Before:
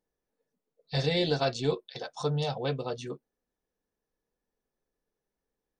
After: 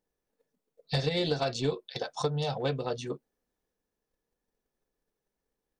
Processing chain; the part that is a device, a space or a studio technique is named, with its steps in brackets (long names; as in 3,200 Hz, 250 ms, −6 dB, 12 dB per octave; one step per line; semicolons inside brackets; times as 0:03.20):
drum-bus smash (transient designer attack +8 dB, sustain +3 dB; downward compressor, threshold −23 dBFS, peak gain reduction 7.5 dB; soft clipping −17 dBFS, distortion −20 dB)